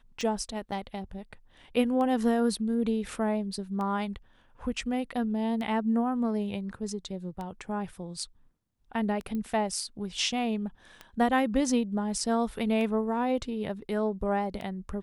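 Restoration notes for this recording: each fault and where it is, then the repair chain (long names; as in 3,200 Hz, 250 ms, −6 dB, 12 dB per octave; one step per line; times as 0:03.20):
scratch tick 33 1/3 rpm −24 dBFS
0:00.71–0:00.72: drop-out 7 ms
0:09.35: click −24 dBFS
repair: click removal
repair the gap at 0:00.71, 7 ms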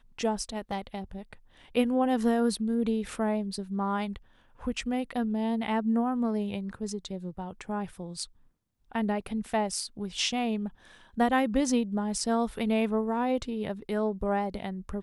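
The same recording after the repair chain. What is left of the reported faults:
none of them is left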